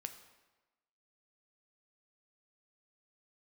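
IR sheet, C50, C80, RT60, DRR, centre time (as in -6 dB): 10.5 dB, 12.0 dB, 1.1 s, 7.0 dB, 14 ms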